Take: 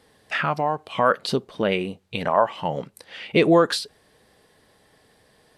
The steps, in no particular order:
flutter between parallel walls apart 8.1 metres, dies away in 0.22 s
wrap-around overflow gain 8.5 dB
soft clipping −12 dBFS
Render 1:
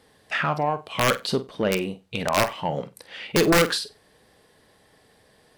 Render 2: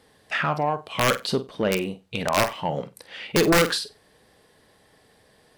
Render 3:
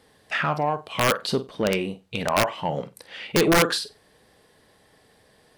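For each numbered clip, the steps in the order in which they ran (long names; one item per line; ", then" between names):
wrap-around overflow, then soft clipping, then flutter between parallel walls
wrap-around overflow, then flutter between parallel walls, then soft clipping
flutter between parallel walls, then wrap-around overflow, then soft clipping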